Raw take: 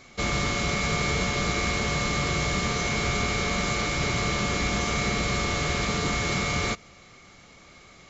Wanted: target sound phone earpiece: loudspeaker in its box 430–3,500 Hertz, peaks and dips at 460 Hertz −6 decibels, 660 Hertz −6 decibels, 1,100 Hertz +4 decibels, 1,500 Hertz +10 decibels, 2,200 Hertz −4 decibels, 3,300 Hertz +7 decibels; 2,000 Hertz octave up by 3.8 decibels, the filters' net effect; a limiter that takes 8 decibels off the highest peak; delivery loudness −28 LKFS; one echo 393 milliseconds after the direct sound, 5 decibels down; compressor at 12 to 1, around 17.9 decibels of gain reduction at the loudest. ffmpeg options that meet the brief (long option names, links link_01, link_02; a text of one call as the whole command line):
ffmpeg -i in.wav -af "equalizer=frequency=2000:width_type=o:gain=3.5,acompressor=threshold=-40dB:ratio=12,alimiter=level_in=11.5dB:limit=-24dB:level=0:latency=1,volume=-11.5dB,highpass=430,equalizer=frequency=460:width_type=q:width=4:gain=-6,equalizer=frequency=660:width_type=q:width=4:gain=-6,equalizer=frequency=1100:width_type=q:width=4:gain=4,equalizer=frequency=1500:width_type=q:width=4:gain=10,equalizer=frequency=2200:width_type=q:width=4:gain=-4,equalizer=frequency=3300:width_type=q:width=4:gain=7,lowpass=frequency=3500:width=0.5412,lowpass=frequency=3500:width=1.3066,aecho=1:1:393:0.562,volume=16dB" out.wav